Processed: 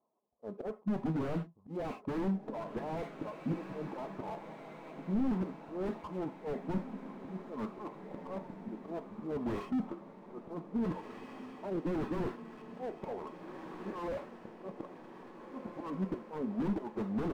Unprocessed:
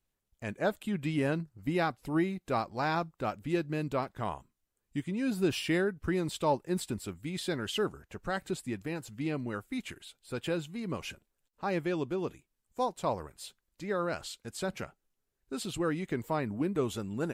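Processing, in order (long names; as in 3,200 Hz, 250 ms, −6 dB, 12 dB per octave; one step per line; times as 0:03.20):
high-pass filter 500 Hz 12 dB per octave
reverb reduction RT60 0.78 s
Butterworth low-pass 1,300 Hz 72 dB per octave
comb filter 4.7 ms, depth 33%
in parallel at +1.5 dB: compressor whose output falls as the input rises −44 dBFS, ratio −1
on the sum: leveller curve on the samples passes 1
volume swells 313 ms
wave folding −29.5 dBFS
formants moved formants −3 semitones
on a send: feedback delay with all-pass diffusion 1,739 ms, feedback 60%, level −14 dB
on the sum: reverb whose tail is shaped and stops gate 130 ms falling, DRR 9.5 dB
slew-rate limiting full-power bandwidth 5.7 Hz
level +4.5 dB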